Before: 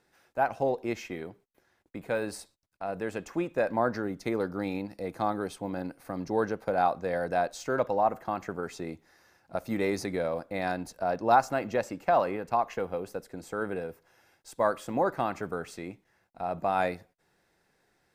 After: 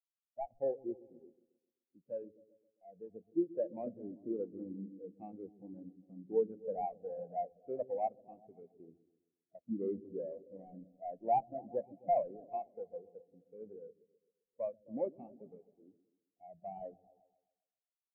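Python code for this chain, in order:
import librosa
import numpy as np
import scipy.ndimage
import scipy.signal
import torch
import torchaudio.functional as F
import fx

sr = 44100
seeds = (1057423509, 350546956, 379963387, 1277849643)

y = scipy.signal.medfilt(x, 41)
y = fx.echo_opening(y, sr, ms=131, hz=400, octaves=1, feedback_pct=70, wet_db=-6)
y = fx.spectral_expand(y, sr, expansion=2.5)
y = F.gain(torch.from_numpy(y), -4.5).numpy()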